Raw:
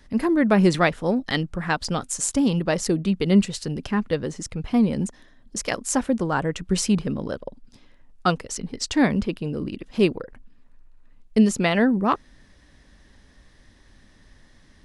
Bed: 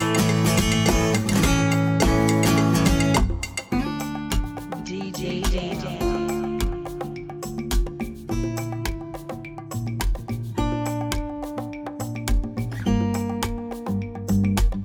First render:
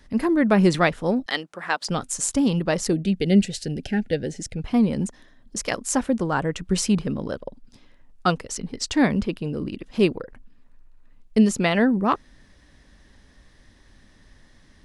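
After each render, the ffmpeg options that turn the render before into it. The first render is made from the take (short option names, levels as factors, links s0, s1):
-filter_complex "[0:a]asettb=1/sr,asplit=3[s0][s1][s2];[s0]atrim=end=1.264[s3];[s1]atrim=start=1.26:end=1.89,asetpts=PTS-STARTPTS,afade=t=in:d=0.004:c=qsin,afade=t=out:st=0.626:d=0.004:c=qsin,highpass=450[s4];[s2]atrim=start=1.886[s5];[s3][s4]acrossfade=d=0.004:c1=hsin:c2=qsin[s6];[s6][s5]acrossfade=d=0.004:c1=qsin:c2=hsin,asettb=1/sr,asplit=3[s7][s8][s9];[s7]atrim=end=2.934[s10];[s8]atrim=start=2.93:end=4.59,asetpts=PTS-STARTPTS,afade=t=in:d=0.004:c=qsin,afade=t=out:st=1.656:d=0.004:c=qsin,asuperstop=centerf=1100:order=8:qfactor=1.7[s11];[s9]atrim=start=4.586[s12];[s10][s11]acrossfade=d=0.004:c1=hsin:c2=qsin[s13];[s13][s12]acrossfade=d=0.004:c1=qsin:c2=hsin"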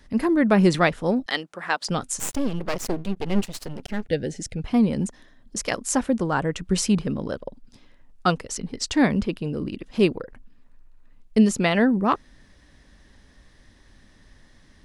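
-filter_complex "[0:a]asettb=1/sr,asplit=3[s0][s1][s2];[s0]atrim=end=2.194[s3];[s1]atrim=start=2.19:end=4.09,asetpts=PTS-STARTPTS,afade=t=in:d=0.004:c=qsin,afade=t=out:st=1.896:d=0.004:c=qsin,aeval=exprs='max(val(0),0)':c=same[s4];[s2]atrim=start=4.086[s5];[s3][s4]acrossfade=d=0.004:c1=hsin:c2=qsin[s6];[s6][s5]acrossfade=d=0.004:c1=qsin:c2=hsin"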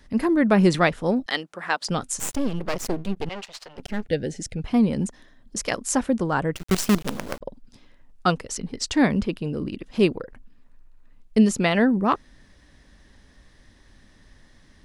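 -filter_complex "[0:a]asettb=1/sr,asplit=3[s0][s1][s2];[s0]atrim=end=3.294[s3];[s1]atrim=start=3.29:end=3.78,asetpts=PTS-STARTPTS,afade=t=in:d=0.004:c=qsin,afade=t=out:st=0.486:d=0.004:c=qsin,acrossover=split=560 6600:gain=0.0891 1 0.141[s4][s5][s6];[s4][s5][s6]amix=inputs=3:normalize=0[s7];[s2]atrim=start=3.776[s8];[s3][s7]acrossfade=d=0.004:c1=hsin:c2=qsin[s9];[s9][s8]acrossfade=d=0.004:c1=qsin:c2=hsin,asettb=1/sr,asplit=3[s10][s11][s12];[s10]atrim=end=6.554[s13];[s11]atrim=start=6.55:end=7.41,asetpts=PTS-STARTPTS,afade=t=in:d=0.004:c=qsin,afade=t=out:st=0.856:d=0.004:c=qsin,acrusher=bits=4:dc=4:mix=0:aa=0.000001[s14];[s12]atrim=start=7.406[s15];[s13][s14]acrossfade=d=0.004:c1=hsin:c2=qsin[s16];[s16][s15]acrossfade=d=0.004:c1=qsin:c2=hsin"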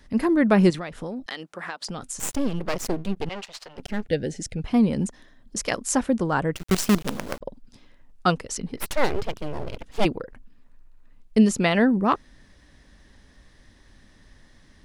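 -filter_complex "[0:a]asettb=1/sr,asplit=3[s0][s1][s2];[s0]atrim=end=0.704[s3];[s1]atrim=start=0.7:end=2.23,asetpts=PTS-STARTPTS,afade=t=in:d=0.004:c=qsin,afade=t=out:st=1.526:d=0.004:c=qsin,acompressor=threshold=0.0398:ratio=12:attack=3.2:release=140:knee=1:detection=peak[s4];[s2]atrim=start=2.226[s5];[s3][s4]acrossfade=d=0.004:c1=hsin:c2=qsin[s6];[s6][s5]acrossfade=d=0.004:c1=qsin:c2=hsin,asplit=3[s7][s8][s9];[s7]afade=t=out:st=8.76:d=0.02[s10];[s8]aeval=exprs='abs(val(0))':c=same,afade=t=in:st=8.76:d=0.02,afade=t=out:st=10.04:d=0.02[s11];[s9]afade=t=in:st=10.04:d=0.02[s12];[s10][s11][s12]amix=inputs=3:normalize=0"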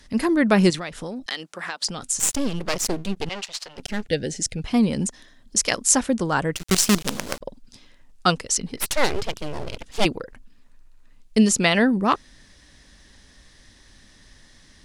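-af "equalizer=f=6900:w=0.36:g=10"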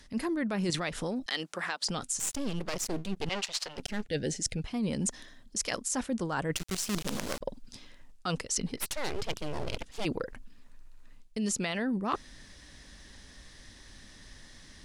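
-af "alimiter=limit=0.266:level=0:latency=1:release=40,areverse,acompressor=threshold=0.0398:ratio=12,areverse"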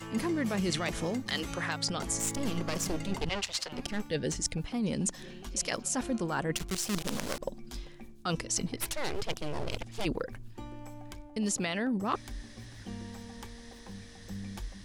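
-filter_complex "[1:a]volume=0.0944[s0];[0:a][s0]amix=inputs=2:normalize=0"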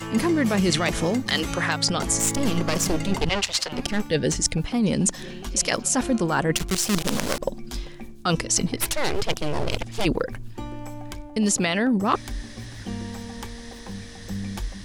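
-af "volume=2.99"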